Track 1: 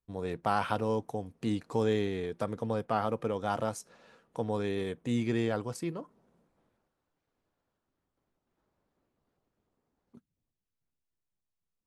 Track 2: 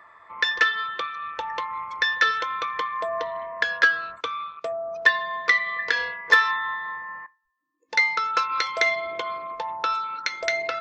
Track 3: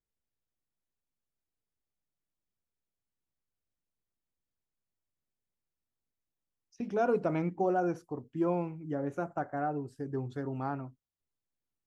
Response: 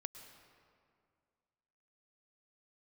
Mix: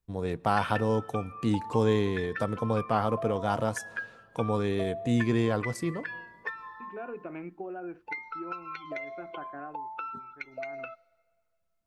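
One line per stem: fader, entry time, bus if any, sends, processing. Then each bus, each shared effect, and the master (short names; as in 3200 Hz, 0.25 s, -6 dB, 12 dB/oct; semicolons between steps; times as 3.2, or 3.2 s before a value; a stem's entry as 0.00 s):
+1.5 dB, 0.00 s, no bus, send -13 dB, dry
-6.0 dB, 0.15 s, bus A, send -18 dB, per-bin expansion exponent 2; bell 800 Hz +6 dB 0.77 oct; wow and flutter 23 cents
-6.5 dB, 0.00 s, bus A, no send, auto duck -16 dB, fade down 0.55 s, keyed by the first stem
bus A: 0.0 dB, speaker cabinet 250–2900 Hz, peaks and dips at 350 Hz +4 dB, 520 Hz -4 dB, 940 Hz -3 dB, 1600 Hz +5 dB, 2600 Hz +10 dB; compressor 12:1, threshold -35 dBFS, peak gain reduction 20.5 dB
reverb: on, RT60 2.2 s, pre-delay 99 ms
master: low shelf 120 Hz +7 dB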